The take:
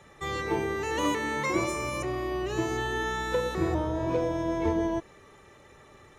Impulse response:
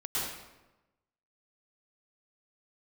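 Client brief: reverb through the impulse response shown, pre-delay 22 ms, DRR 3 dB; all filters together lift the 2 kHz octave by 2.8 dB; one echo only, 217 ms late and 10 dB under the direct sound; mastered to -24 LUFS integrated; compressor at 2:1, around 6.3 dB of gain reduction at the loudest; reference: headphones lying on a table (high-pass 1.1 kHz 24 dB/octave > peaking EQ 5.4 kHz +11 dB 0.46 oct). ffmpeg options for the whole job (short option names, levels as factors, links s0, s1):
-filter_complex "[0:a]equalizer=f=2000:t=o:g=3,acompressor=threshold=0.02:ratio=2,aecho=1:1:217:0.316,asplit=2[s0][s1];[1:a]atrim=start_sample=2205,adelay=22[s2];[s1][s2]afir=irnorm=-1:irlink=0,volume=0.335[s3];[s0][s3]amix=inputs=2:normalize=0,highpass=f=1100:w=0.5412,highpass=f=1100:w=1.3066,equalizer=f=5400:t=o:w=0.46:g=11,volume=3.76"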